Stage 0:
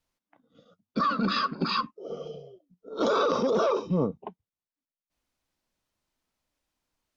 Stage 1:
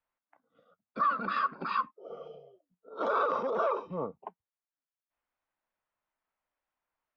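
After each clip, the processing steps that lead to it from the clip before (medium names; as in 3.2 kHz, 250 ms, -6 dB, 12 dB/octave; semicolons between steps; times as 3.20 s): three-band isolator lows -15 dB, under 580 Hz, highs -24 dB, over 2.3 kHz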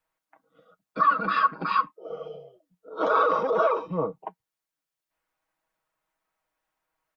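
comb 6.3 ms, depth 60%; trim +5.5 dB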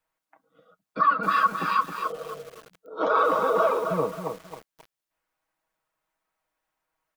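bit-crushed delay 267 ms, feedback 35%, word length 7-bit, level -6 dB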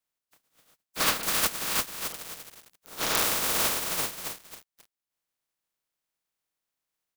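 spectral contrast reduction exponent 0.15; trim -4 dB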